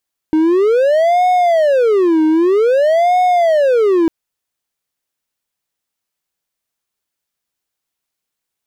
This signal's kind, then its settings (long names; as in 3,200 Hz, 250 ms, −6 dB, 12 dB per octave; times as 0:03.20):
siren wail 312–729 Hz 0.52 per second triangle −7 dBFS 3.75 s